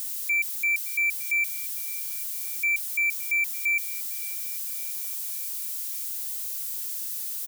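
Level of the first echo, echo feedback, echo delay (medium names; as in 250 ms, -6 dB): -21.5 dB, 53%, 567 ms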